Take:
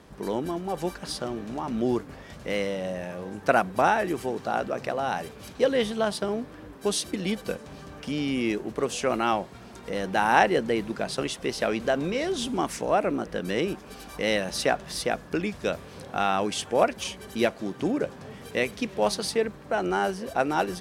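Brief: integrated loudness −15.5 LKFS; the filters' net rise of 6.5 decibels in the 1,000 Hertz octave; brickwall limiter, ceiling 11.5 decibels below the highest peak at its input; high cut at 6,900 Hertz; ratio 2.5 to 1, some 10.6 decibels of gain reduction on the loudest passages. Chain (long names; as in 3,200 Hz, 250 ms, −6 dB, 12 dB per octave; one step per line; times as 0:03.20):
low-pass filter 6,900 Hz
parametric band 1,000 Hz +9 dB
downward compressor 2.5 to 1, threshold −26 dBFS
level +17 dB
brickwall limiter −2.5 dBFS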